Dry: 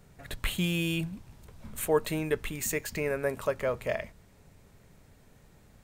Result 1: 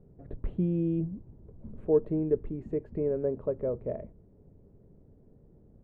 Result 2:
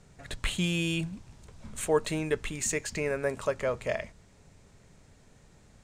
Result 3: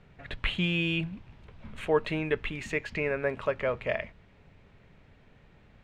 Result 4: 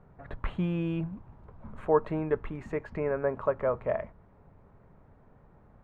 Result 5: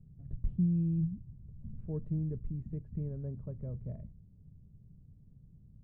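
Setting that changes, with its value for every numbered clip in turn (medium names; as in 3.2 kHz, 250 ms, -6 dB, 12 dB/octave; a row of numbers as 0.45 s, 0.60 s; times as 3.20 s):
resonant low-pass, frequency: 400 Hz, 7.4 kHz, 2.8 kHz, 1.1 kHz, 150 Hz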